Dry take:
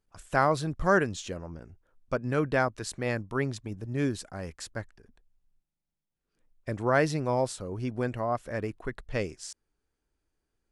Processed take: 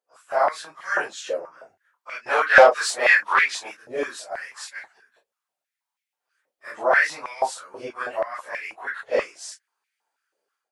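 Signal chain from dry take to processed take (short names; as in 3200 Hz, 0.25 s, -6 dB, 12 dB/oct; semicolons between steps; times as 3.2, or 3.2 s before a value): phase scrambler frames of 0.1 s; 2.26–3.77 overdrive pedal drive 16 dB, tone 7300 Hz, clips at -13 dBFS; AGC gain up to 10 dB; stepped high-pass 6.2 Hz 540–2200 Hz; gain -5.5 dB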